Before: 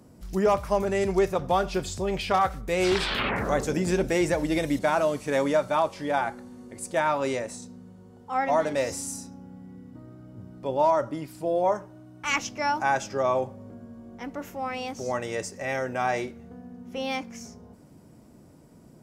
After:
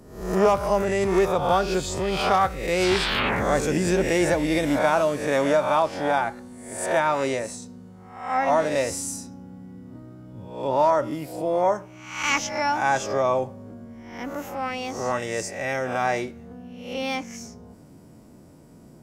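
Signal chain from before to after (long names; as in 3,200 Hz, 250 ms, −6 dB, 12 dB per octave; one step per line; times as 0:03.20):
peak hold with a rise ahead of every peak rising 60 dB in 0.63 s
level +1.5 dB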